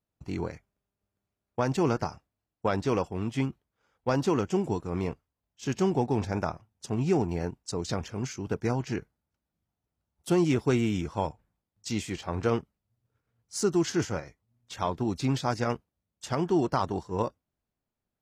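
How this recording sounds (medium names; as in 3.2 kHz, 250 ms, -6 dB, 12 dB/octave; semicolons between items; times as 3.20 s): noise floor -88 dBFS; spectral tilt -6.5 dB/octave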